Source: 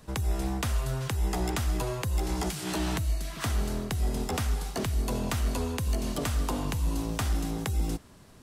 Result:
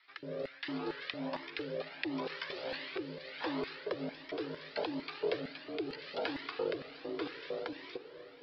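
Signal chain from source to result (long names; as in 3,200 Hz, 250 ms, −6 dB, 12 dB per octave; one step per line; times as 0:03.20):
Butterworth low-pass 4,900 Hz 96 dB per octave
ring modulation 210 Hz
rotating-speaker cabinet horn 0.75 Hz
auto-filter high-pass square 2.2 Hz 440–1,900 Hz
on a send: feedback delay with all-pass diffusion 565 ms, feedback 55%, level −14 dB
on the sum: flanger whose copies keep moving one way rising 1.4 Hz
level +4 dB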